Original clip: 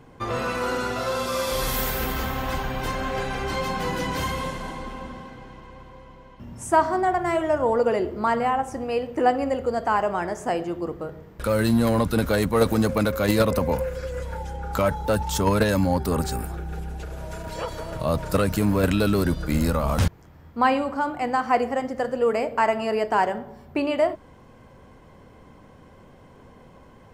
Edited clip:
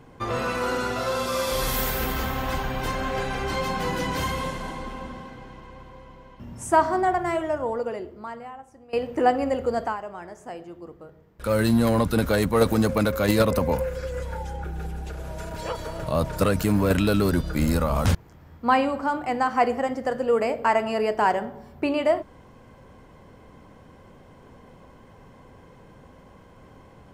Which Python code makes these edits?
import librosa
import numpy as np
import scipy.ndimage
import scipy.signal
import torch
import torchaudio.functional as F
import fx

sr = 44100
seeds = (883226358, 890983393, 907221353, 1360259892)

y = fx.edit(x, sr, fx.fade_out_to(start_s=7.09, length_s=1.84, curve='qua', floor_db=-20.5),
    fx.fade_down_up(start_s=9.82, length_s=1.7, db=-12.0, fade_s=0.14),
    fx.cut(start_s=14.64, length_s=1.93), tone=tone)